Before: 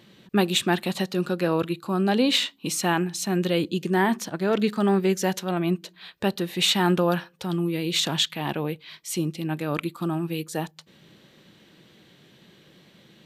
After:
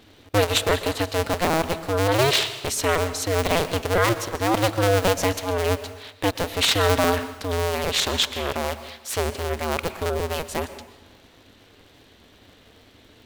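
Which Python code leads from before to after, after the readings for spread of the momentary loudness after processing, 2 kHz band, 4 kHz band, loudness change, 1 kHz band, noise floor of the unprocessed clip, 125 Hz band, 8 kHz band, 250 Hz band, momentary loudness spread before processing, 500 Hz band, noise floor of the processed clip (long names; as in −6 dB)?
9 LU, +4.0 dB, +2.0 dB, +2.0 dB, +4.0 dB, −56 dBFS, +2.0 dB, +3.5 dB, −5.0 dB, 8 LU, +4.0 dB, −53 dBFS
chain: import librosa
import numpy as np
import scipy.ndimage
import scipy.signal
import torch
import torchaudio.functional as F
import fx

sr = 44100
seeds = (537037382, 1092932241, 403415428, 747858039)

y = fx.cycle_switch(x, sr, every=2, mode='inverted')
y = fx.rev_plate(y, sr, seeds[0], rt60_s=1.0, hf_ratio=0.85, predelay_ms=105, drr_db=12.5)
y = F.gain(torch.from_numpy(y), 1.5).numpy()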